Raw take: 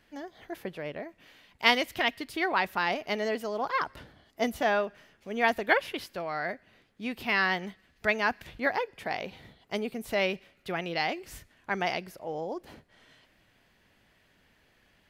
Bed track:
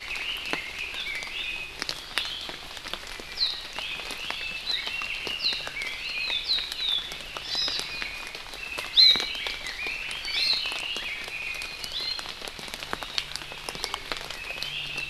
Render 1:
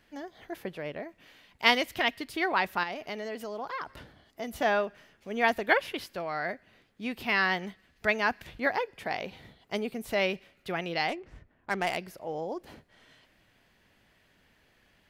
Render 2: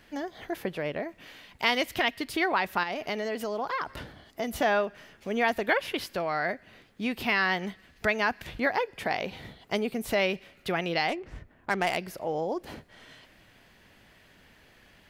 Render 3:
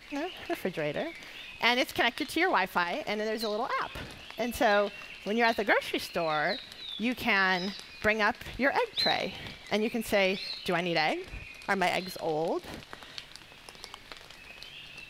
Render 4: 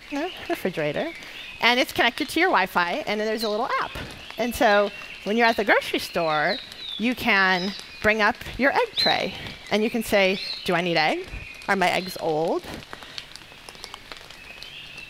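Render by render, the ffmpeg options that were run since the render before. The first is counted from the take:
-filter_complex "[0:a]asettb=1/sr,asplit=3[a][b][c];[a]atrim=end=2.834[d];[b]atrim=start=2.83:end=4.53,asetpts=PTS-STARTPTS,afade=t=in:d=0.004:c=qsin,afade=t=out:st=1.696:d=0.004:c=qsin,acompressor=threshold=-35dB:ratio=2.5:attack=3.2:release=140:knee=1:detection=peak[e];[c]atrim=start=4.526[f];[d][e]acrossfade=d=0.004:c1=hsin:c2=qsin[g];[g][f]acrossfade=d=0.004:c1=qsin:c2=hsin,asplit=3[h][i][j];[h]afade=t=out:st=11.08:d=0.02[k];[i]adynamicsmooth=sensitivity=6.5:basefreq=1.3k,afade=t=in:st=11.08:d=0.02,afade=t=out:st=11.96:d=0.02[l];[j]afade=t=in:st=11.96:d=0.02[m];[k][l][m]amix=inputs=3:normalize=0"
-filter_complex "[0:a]asplit=2[a][b];[b]alimiter=limit=-17.5dB:level=0:latency=1:release=112,volume=3dB[c];[a][c]amix=inputs=2:normalize=0,acompressor=threshold=-32dB:ratio=1.5"
-filter_complex "[1:a]volume=-13.5dB[a];[0:a][a]amix=inputs=2:normalize=0"
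-af "volume=6.5dB"

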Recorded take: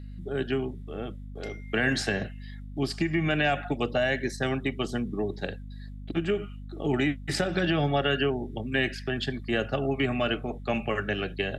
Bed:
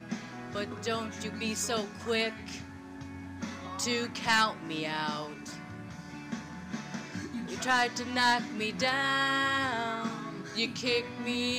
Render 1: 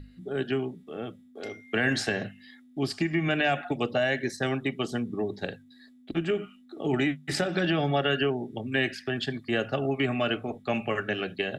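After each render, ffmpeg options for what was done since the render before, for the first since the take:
-af "bandreject=f=50:t=h:w=6,bandreject=f=100:t=h:w=6,bandreject=f=150:t=h:w=6,bandreject=f=200:t=h:w=6"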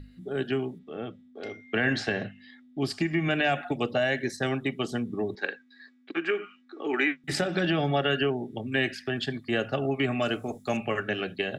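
-filter_complex "[0:a]asplit=3[a][b][c];[a]afade=t=out:st=0.78:d=0.02[d];[b]lowpass=4.6k,afade=t=in:st=0.78:d=0.02,afade=t=out:st=2.8:d=0.02[e];[c]afade=t=in:st=2.8:d=0.02[f];[d][e][f]amix=inputs=3:normalize=0,asettb=1/sr,asplit=3[g][h][i];[g]atrim=end=5.354[j];[h]atrim=start=5.35:end=7.24,asetpts=PTS-STARTPTS,afade=t=in:d=0.004:c=qsin,afade=t=out:st=1.886:d=0.004:c=qsin,highpass=f=290:w=0.5412,highpass=f=290:w=1.3066,equalizer=f=640:t=q:w=4:g=-8,equalizer=f=1.1k:t=q:w=4:g=6,equalizer=f=1.6k:t=q:w=4:g=9,equalizer=f=2.3k:t=q:w=4:g=7,equalizer=f=3.4k:t=q:w=4:g=-4,lowpass=f=6.1k:w=0.5412,lowpass=f=6.1k:w=1.3066[k];[i]atrim=start=7.236[l];[j][k]acrossfade=d=0.004:c1=hsin:c2=qsin[m];[m][l]acrossfade=d=0.004:c1=qsin:c2=hsin,asettb=1/sr,asplit=3[n][o][p];[n]atrim=end=10.224[q];[o]atrim=start=10.22:end=10.77,asetpts=PTS-STARTPTS,afade=t=in:d=0.004:c=qsin,afade=t=out:st=0.546:d=0.004:c=qsin,highshelf=f=4.5k:t=q:w=1.5:g=12.5[r];[p]atrim=start=10.766[s];[q][r]acrossfade=d=0.004:c1=hsin:c2=qsin[t];[t][s]acrossfade=d=0.004:c1=qsin:c2=hsin"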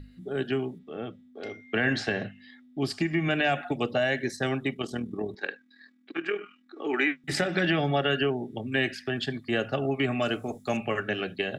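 -filter_complex "[0:a]asettb=1/sr,asplit=3[a][b][c];[a]atrim=end=4.744[d];[b]atrim=start=4.74:end=6.77,asetpts=PTS-STARTPTS,afade=t=in:d=0.004:c=qsin,afade=t=out:st=2.026:d=0.004:c=qsin,tremolo=f=40:d=0.571[e];[c]atrim=start=6.766[f];[d][e]acrossfade=d=0.004:c1=hsin:c2=qsin[g];[g][f]acrossfade=d=0.004:c1=qsin:c2=hsin,asettb=1/sr,asplit=3[h][i][j];[h]atrim=end=7.374[k];[i]atrim=start=7.37:end=7.8,asetpts=PTS-STARTPTS,afade=t=in:d=0.004:c=qsin,afade=t=out:st=0.426:d=0.004:c=qsin,equalizer=f=2k:w=3:g=8[l];[j]atrim=start=7.796[m];[k][l]acrossfade=d=0.004:c1=hsin:c2=qsin[n];[n][m]acrossfade=d=0.004:c1=qsin:c2=hsin"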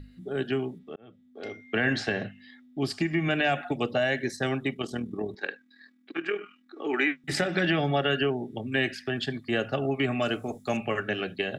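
-filter_complex "[0:a]asplit=2[a][b];[a]atrim=end=0.96,asetpts=PTS-STARTPTS,afade=t=out:st=0.956:d=0.004:c=hsin[c];[b]atrim=start=0.96,asetpts=PTS-STARTPTS,afade=t=in:d=0.5[d];[c][d]concat=n=2:v=0:a=1"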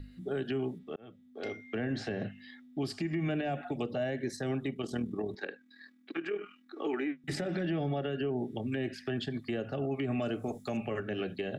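-filter_complex "[0:a]acrossover=split=640[a][b];[b]acompressor=threshold=-38dB:ratio=6[c];[a][c]amix=inputs=2:normalize=0,alimiter=level_in=1dB:limit=-24dB:level=0:latency=1:release=80,volume=-1dB"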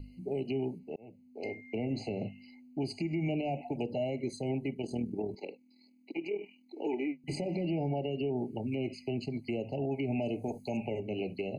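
-af "afftfilt=real='re*eq(mod(floor(b*sr/1024/1000),2),0)':imag='im*eq(mod(floor(b*sr/1024/1000),2),0)':win_size=1024:overlap=0.75"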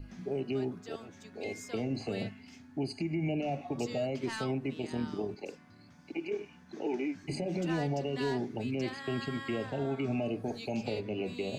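-filter_complex "[1:a]volume=-15dB[a];[0:a][a]amix=inputs=2:normalize=0"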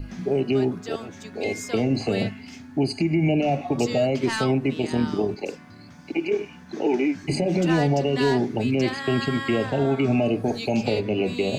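-af "volume=11.5dB"

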